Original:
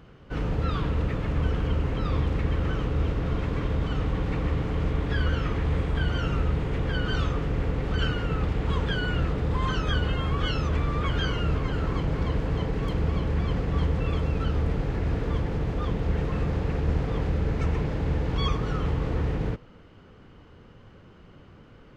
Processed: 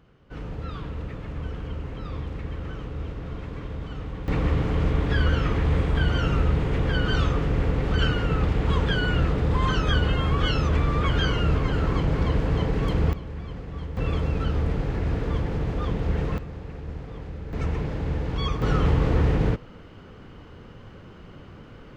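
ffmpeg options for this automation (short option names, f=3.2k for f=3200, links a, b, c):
-af "asetnsamples=n=441:p=0,asendcmd='4.28 volume volume 3.5dB;13.13 volume volume -9dB;13.97 volume volume 1dB;16.38 volume volume -10dB;17.53 volume volume -1dB;18.62 volume volume 6dB',volume=-7dB"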